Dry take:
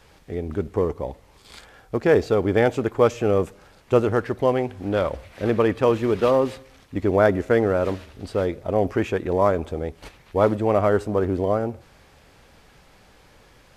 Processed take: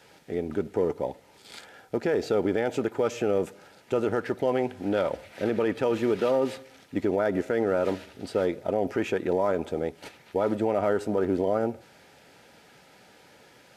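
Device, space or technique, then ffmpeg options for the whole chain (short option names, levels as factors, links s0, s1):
PA system with an anti-feedback notch: -af "highpass=170,asuperstop=centerf=1100:order=12:qfactor=6.7,alimiter=limit=0.168:level=0:latency=1:release=79"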